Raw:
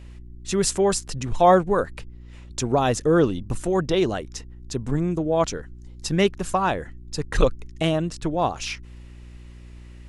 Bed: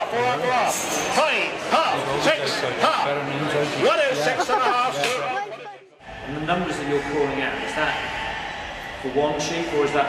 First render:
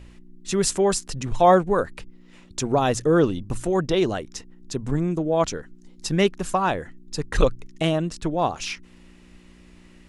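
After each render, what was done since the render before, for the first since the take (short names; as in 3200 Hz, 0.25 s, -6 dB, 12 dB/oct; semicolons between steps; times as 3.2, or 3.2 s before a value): de-hum 60 Hz, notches 2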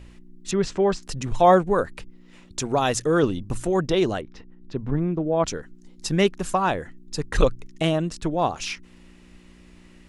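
0.51–1.03 air absorption 190 m; 2.62–3.23 tilt shelf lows -3.5 dB; 4.21–5.45 air absorption 320 m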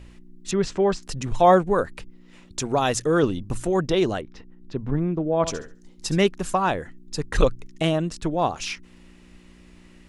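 5.34–6.18 flutter echo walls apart 11.8 m, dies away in 0.34 s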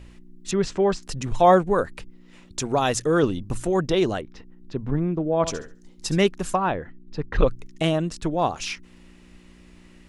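6.56–7.48 air absorption 280 m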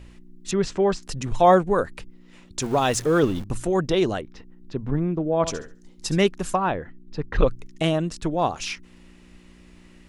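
2.62–3.44 zero-crossing step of -34.5 dBFS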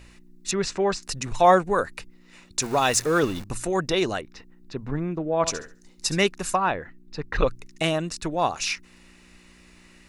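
tilt shelf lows -5 dB, about 820 Hz; notch 3200 Hz, Q 7.5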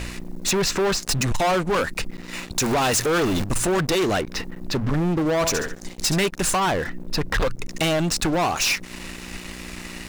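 compressor 2:1, threshold -34 dBFS, peak gain reduction 12.5 dB; sample leveller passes 5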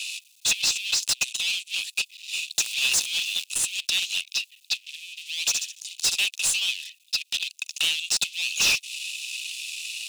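rippled Chebyshev high-pass 2500 Hz, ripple 3 dB; overdrive pedal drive 17 dB, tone 4800 Hz, clips at -11 dBFS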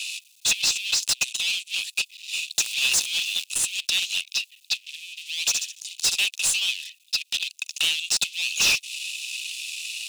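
gain +1 dB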